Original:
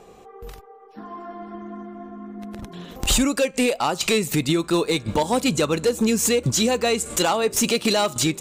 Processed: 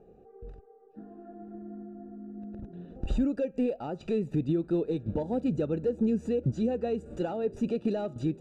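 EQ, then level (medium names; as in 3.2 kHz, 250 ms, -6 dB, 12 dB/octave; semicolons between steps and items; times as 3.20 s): boxcar filter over 41 samples; distance through air 53 m; -5.0 dB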